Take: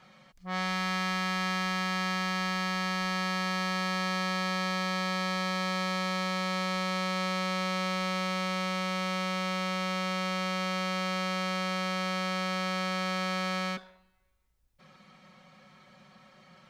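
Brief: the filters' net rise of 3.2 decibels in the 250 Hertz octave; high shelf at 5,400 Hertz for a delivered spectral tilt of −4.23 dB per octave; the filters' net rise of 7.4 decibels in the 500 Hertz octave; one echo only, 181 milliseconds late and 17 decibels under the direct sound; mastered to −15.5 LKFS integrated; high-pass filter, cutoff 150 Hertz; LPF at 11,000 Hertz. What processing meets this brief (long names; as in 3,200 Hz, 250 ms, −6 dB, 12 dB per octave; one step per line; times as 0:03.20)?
high-pass filter 150 Hz
low-pass filter 11,000 Hz
parametric band 250 Hz +7 dB
parametric band 500 Hz +7 dB
high-shelf EQ 5,400 Hz +8 dB
single-tap delay 181 ms −17 dB
level +12 dB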